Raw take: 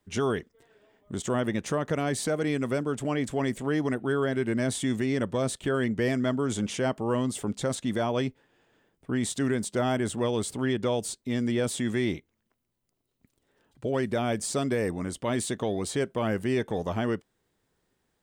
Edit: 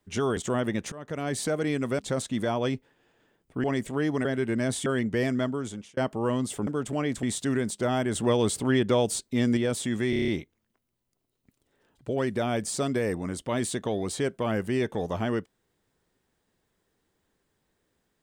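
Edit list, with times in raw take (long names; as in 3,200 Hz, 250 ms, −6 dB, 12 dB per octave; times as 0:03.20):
0:00.37–0:01.17: remove
0:01.72–0:02.19: fade in, from −19.5 dB
0:02.79–0:03.35: swap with 0:07.52–0:09.17
0:03.96–0:04.24: remove
0:04.85–0:05.71: remove
0:06.23–0:06.82: fade out linear
0:10.09–0:11.51: clip gain +4 dB
0:12.04: stutter 0.03 s, 7 plays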